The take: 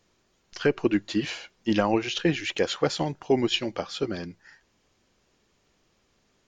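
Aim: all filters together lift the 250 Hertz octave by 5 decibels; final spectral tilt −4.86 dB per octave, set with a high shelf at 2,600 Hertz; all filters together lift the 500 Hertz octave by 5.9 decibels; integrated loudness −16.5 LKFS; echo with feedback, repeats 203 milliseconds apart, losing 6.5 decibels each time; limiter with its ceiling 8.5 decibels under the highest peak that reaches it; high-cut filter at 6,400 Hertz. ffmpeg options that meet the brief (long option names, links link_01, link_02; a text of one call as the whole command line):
ffmpeg -i in.wav -af "lowpass=6400,equalizer=frequency=250:width_type=o:gain=4.5,equalizer=frequency=500:width_type=o:gain=6,highshelf=frequency=2600:gain=-7,alimiter=limit=-14dB:level=0:latency=1,aecho=1:1:203|406|609|812|1015|1218:0.473|0.222|0.105|0.0491|0.0231|0.0109,volume=9.5dB" out.wav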